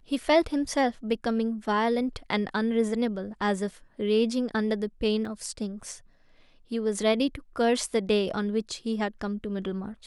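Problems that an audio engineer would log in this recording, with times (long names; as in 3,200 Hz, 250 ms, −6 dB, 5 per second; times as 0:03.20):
0:05.25: drop-out 2.4 ms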